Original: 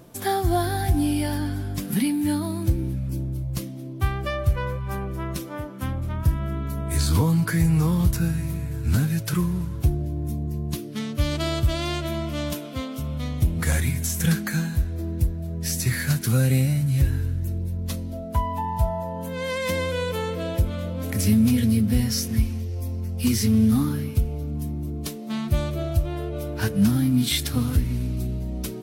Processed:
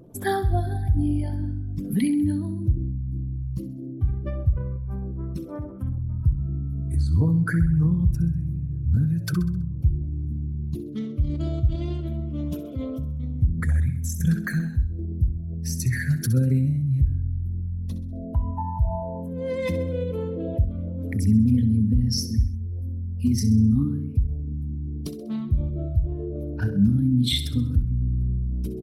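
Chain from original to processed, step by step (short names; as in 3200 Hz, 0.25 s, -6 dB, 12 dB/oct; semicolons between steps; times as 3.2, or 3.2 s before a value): formant sharpening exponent 2; feedback echo 65 ms, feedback 48%, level -12.5 dB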